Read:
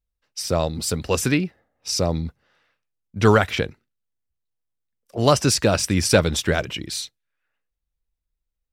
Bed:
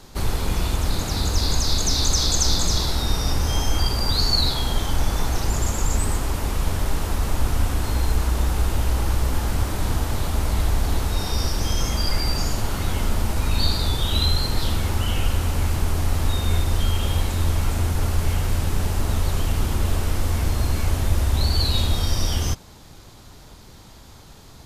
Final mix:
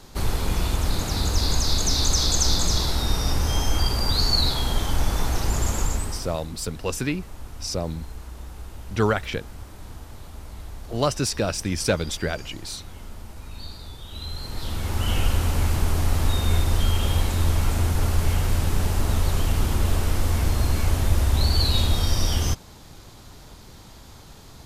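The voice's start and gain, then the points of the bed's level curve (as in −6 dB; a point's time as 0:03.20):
5.75 s, −6.0 dB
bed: 0:05.81 −1 dB
0:06.53 −17 dB
0:14.07 −17 dB
0:15.12 0 dB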